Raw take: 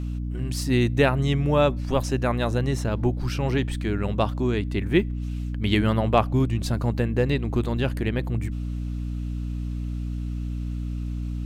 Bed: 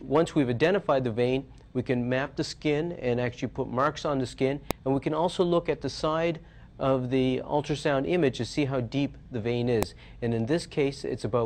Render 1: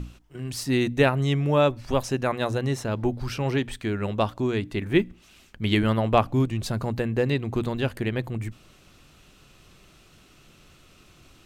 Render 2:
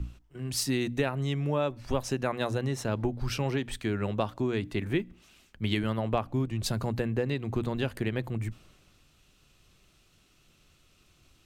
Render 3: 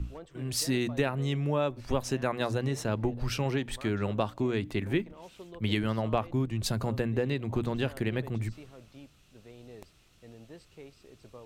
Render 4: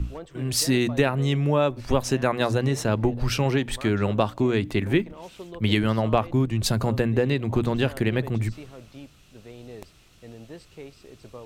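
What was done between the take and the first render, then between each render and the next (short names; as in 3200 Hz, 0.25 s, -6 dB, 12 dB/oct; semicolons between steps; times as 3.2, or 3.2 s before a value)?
notches 60/120/180/240/300 Hz
compressor 10:1, threshold -25 dBFS, peak gain reduction 12 dB; three-band expander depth 40%
add bed -23 dB
gain +7 dB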